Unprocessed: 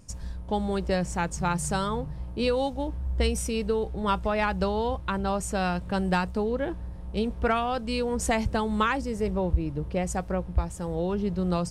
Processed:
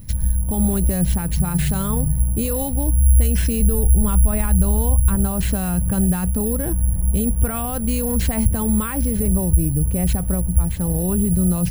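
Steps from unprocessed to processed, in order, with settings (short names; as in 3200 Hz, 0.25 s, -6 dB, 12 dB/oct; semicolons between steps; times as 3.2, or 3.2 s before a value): 3.59–5.16 low shelf 90 Hz +11.5 dB; careless resampling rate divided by 4×, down none, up zero stuff; AGC; limiter -11 dBFS, peak gain reduction 10.5 dB; tone controls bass +15 dB, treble -5 dB; gain +2 dB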